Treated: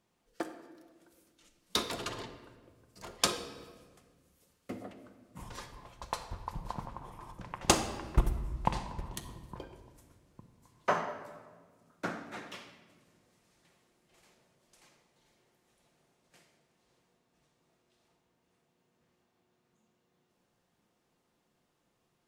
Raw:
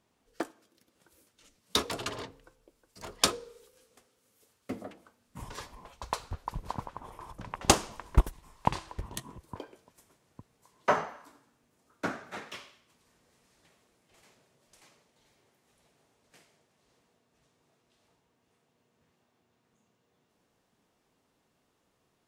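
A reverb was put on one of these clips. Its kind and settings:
rectangular room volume 1,700 cubic metres, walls mixed, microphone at 0.87 metres
level −3.5 dB

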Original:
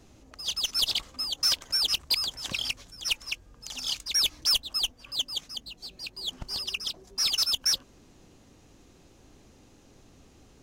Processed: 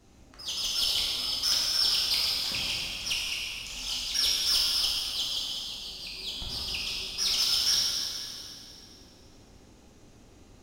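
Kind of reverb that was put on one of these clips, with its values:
dense smooth reverb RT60 2.9 s, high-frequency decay 0.85×, DRR −6.5 dB
level −6 dB

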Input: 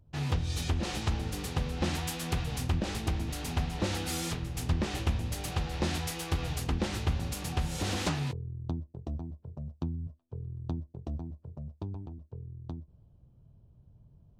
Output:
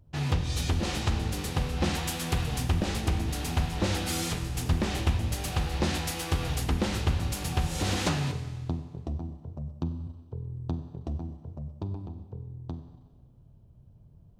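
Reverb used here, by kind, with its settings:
four-comb reverb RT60 1.5 s, combs from 31 ms, DRR 9 dB
level +3 dB

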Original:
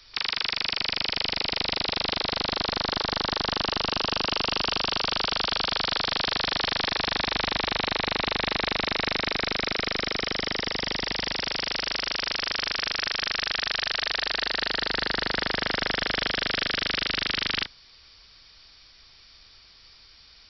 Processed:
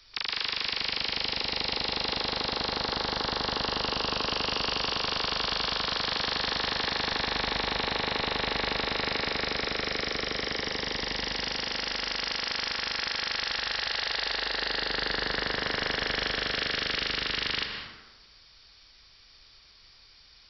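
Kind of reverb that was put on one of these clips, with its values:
dense smooth reverb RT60 1.1 s, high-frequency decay 0.65×, pre-delay 115 ms, DRR 4 dB
level −4 dB

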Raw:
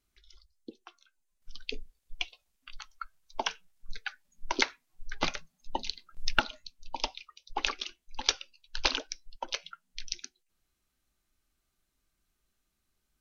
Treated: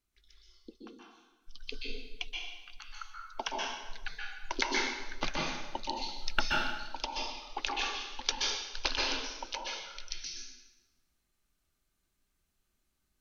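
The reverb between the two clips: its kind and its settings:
dense smooth reverb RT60 1.1 s, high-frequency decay 0.85×, pre-delay 115 ms, DRR −3.5 dB
level −5 dB

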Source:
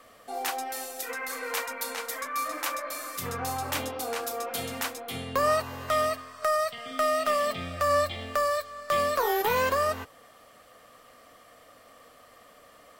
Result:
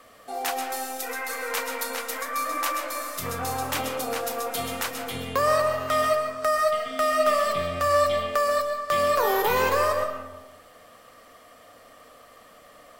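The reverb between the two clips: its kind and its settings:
comb and all-pass reverb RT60 1.1 s, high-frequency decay 0.35×, pre-delay 90 ms, DRR 5 dB
level +2 dB

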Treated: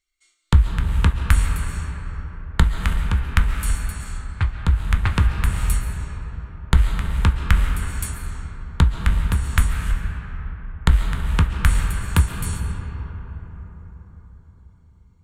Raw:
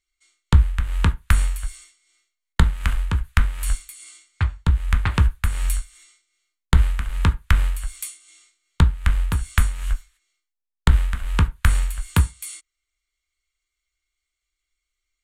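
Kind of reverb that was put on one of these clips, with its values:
comb and all-pass reverb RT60 5 s, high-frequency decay 0.35×, pre-delay 95 ms, DRR 4.5 dB

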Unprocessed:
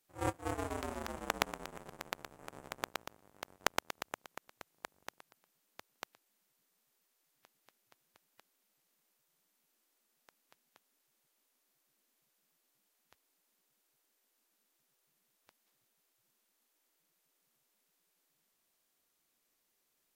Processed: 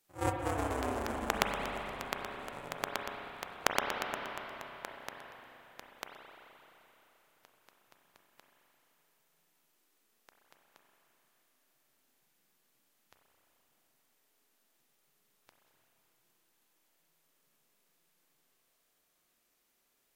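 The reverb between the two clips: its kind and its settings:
spring reverb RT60 3.7 s, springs 31/43 ms, chirp 70 ms, DRR 1 dB
level +2.5 dB

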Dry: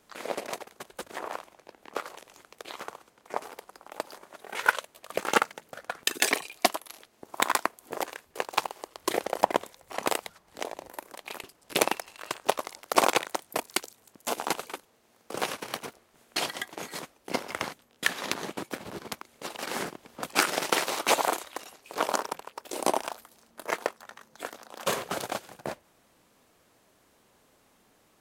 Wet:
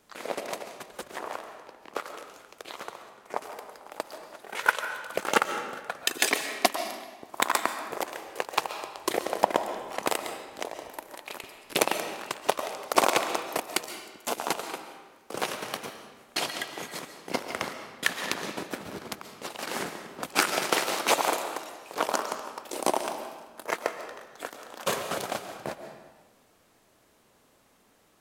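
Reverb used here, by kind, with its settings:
comb and all-pass reverb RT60 1.3 s, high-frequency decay 0.8×, pre-delay 95 ms, DRR 7.5 dB

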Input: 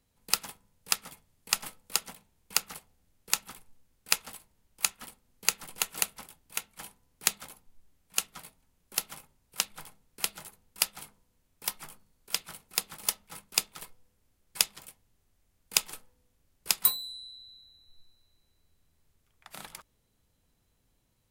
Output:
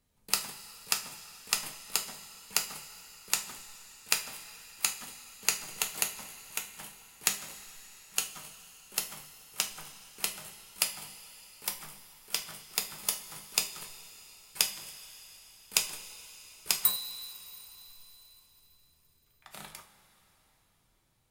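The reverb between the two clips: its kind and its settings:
coupled-rooms reverb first 0.33 s, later 4.4 s, from −18 dB, DRR 3 dB
level −2.5 dB

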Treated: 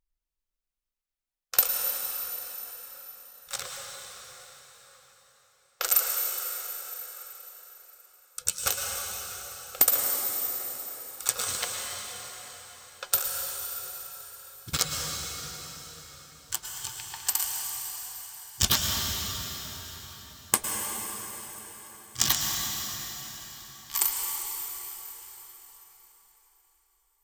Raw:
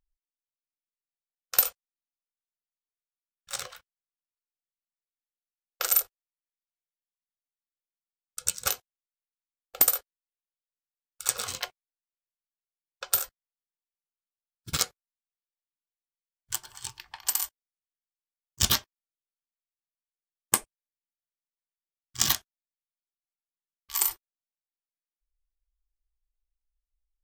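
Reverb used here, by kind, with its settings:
dense smooth reverb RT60 4.9 s, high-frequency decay 0.85×, pre-delay 95 ms, DRR 0 dB

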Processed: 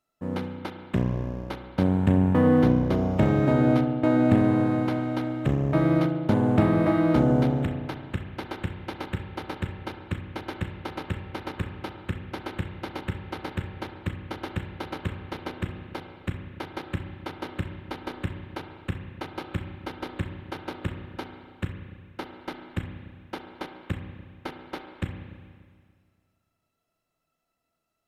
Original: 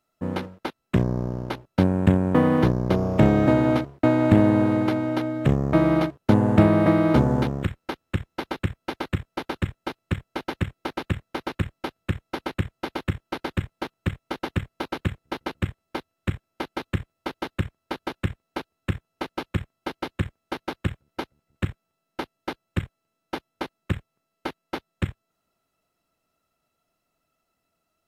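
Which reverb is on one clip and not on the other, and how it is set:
spring reverb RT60 1.9 s, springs 32/36 ms, chirp 40 ms, DRR 5 dB
level −5 dB

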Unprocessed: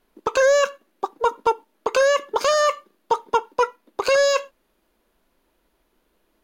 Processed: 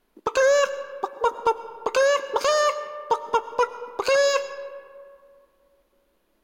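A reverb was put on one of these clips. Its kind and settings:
comb and all-pass reverb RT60 2.3 s, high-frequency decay 0.45×, pre-delay 65 ms, DRR 13 dB
level −2 dB

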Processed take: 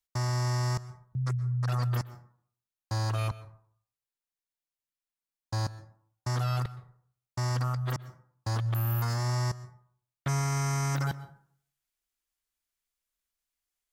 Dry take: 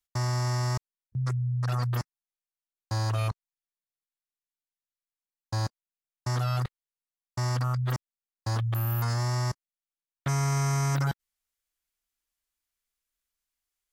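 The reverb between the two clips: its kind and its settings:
dense smooth reverb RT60 0.56 s, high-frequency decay 0.45×, pre-delay 110 ms, DRR 15.5 dB
level −1.5 dB

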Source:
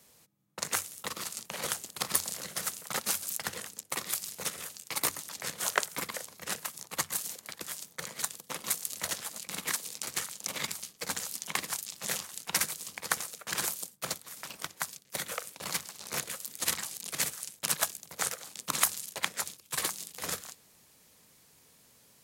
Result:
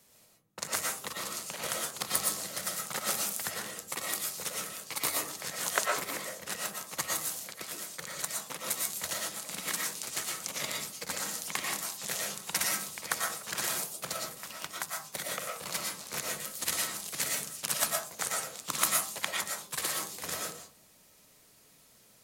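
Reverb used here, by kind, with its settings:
comb and all-pass reverb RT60 0.46 s, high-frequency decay 0.35×, pre-delay 75 ms, DRR −1.5 dB
level −2.5 dB

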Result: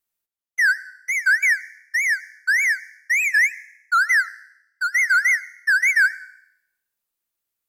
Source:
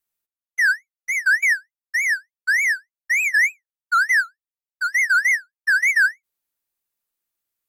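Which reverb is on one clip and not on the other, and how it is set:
dense smooth reverb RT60 0.79 s, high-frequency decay 1×, pre-delay 75 ms, DRR 20 dB

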